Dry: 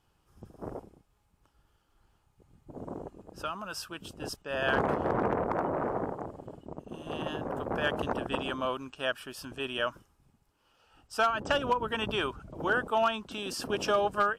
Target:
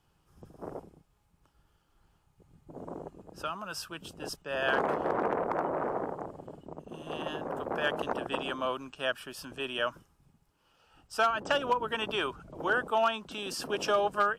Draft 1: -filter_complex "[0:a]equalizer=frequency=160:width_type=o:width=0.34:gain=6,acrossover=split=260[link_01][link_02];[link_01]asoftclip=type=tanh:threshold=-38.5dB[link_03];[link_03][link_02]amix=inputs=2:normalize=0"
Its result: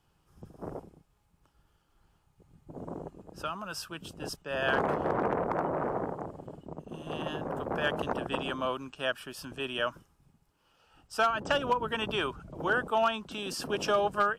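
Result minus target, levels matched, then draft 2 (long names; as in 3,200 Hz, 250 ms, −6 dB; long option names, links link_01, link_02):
soft clipping: distortion −7 dB
-filter_complex "[0:a]equalizer=frequency=160:width_type=o:width=0.34:gain=6,acrossover=split=260[link_01][link_02];[link_01]asoftclip=type=tanh:threshold=-49.5dB[link_03];[link_03][link_02]amix=inputs=2:normalize=0"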